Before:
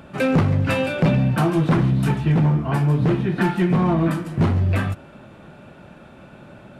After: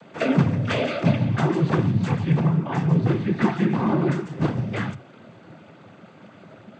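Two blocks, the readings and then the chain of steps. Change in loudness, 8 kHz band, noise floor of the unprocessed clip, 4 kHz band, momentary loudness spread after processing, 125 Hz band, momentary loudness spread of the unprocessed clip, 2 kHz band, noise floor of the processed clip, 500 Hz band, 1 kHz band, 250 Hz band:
-3.0 dB, no reading, -45 dBFS, -1.0 dB, 5 LU, -3.5 dB, 3 LU, -3.0 dB, -49 dBFS, -2.5 dB, -2.5 dB, -2.0 dB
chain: noise-vocoded speech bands 16; trim -2 dB

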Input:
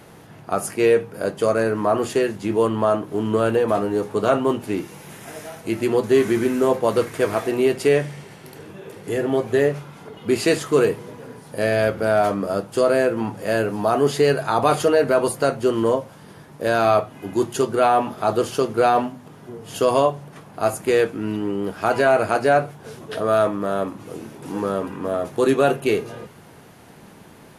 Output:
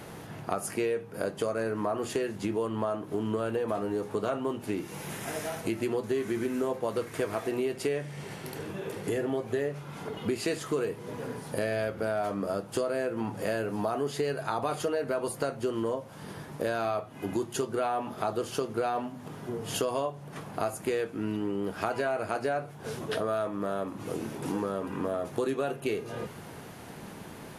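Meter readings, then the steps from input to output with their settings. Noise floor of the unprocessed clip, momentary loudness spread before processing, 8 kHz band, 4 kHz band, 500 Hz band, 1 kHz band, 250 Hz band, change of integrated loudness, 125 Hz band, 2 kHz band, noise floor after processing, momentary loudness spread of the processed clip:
-45 dBFS, 16 LU, -7.0 dB, -8.5 dB, -11.5 dB, -11.5 dB, -9.5 dB, -11.5 dB, -9.0 dB, -11.0 dB, -45 dBFS, 9 LU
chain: compression 5:1, threshold -30 dBFS, peak gain reduction 16.5 dB; trim +1.5 dB

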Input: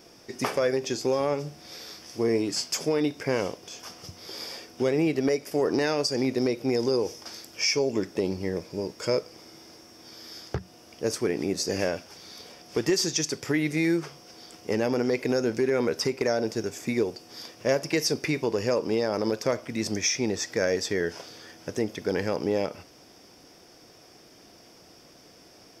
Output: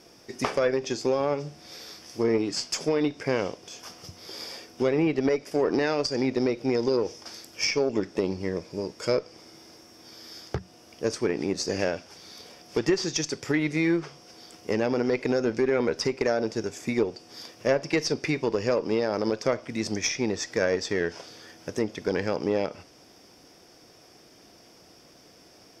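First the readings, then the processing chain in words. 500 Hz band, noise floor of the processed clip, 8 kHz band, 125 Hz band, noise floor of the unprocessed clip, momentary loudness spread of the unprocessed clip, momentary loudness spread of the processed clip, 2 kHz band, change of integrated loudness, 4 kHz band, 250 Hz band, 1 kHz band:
+0.5 dB, -54 dBFS, -3.0 dB, -0.5 dB, -53 dBFS, 16 LU, 17 LU, +0.5 dB, 0.0 dB, -2.0 dB, +0.5 dB, +1.0 dB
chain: Chebyshev shaper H 2 -17 dB, 3 -24 dB, 7 -32 dB, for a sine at -9.5 dBFS; low-pass that closes with the level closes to 1.2 kHz, closed at -17 dBFS; trim +3 dB

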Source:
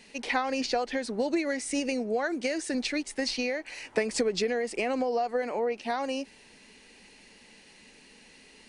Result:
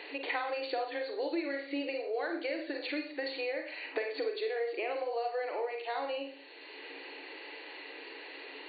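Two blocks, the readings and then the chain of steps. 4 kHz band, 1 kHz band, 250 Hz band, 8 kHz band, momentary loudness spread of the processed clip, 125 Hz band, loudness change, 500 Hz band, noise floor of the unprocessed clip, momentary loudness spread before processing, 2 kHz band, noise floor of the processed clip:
-6.5 dB, -5.0 dB, -9.0 dB, under -40 dB, 11 LU, under -30 dB, -6.5 dB, -4.5 dB, -55 dBFS, 4 LU, -4.0 dB, -48 dBFS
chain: Schroeder reverb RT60 0.42 s, combs from 32 ms, DRR 3 dB; FFT band-pass 270–4600 Hz; three bands compressed up and down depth 70%; trim -7 dB

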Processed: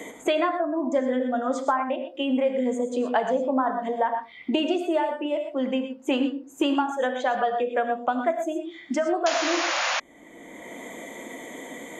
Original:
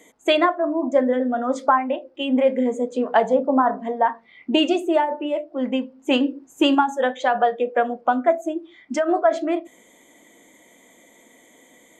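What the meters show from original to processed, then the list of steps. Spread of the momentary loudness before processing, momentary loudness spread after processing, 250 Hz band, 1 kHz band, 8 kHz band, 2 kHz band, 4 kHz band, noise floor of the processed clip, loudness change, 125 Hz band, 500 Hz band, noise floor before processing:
8 LU, 15 LU, -4.0 dB, -4.5 dB, +6.5 dB, -1.5 dB, -3.0 dB, -48 dBFS, -4.5 dB, no reading, -4.0 dB, -54 dBFS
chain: gated-style reverb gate 140 ms rising, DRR 7.5 dB; painted sound noise, 9.26–10.00 s, 500–7100 Hz -18 dBFS; three bands compressed up and down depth 70%; trim -5.5 dB

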